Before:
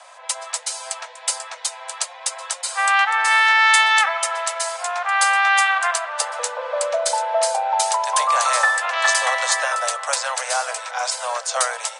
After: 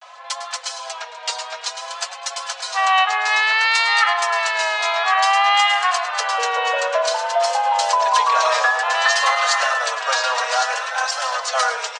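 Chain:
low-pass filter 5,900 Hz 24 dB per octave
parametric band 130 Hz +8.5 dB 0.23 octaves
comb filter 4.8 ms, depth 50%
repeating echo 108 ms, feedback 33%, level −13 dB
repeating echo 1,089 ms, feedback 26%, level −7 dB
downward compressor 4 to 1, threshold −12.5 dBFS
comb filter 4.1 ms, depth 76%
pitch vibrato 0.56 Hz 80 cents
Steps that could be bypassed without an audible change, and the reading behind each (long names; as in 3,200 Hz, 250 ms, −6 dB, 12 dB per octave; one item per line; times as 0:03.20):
parametric band 130 Hz: nothing at its input below 430 Hz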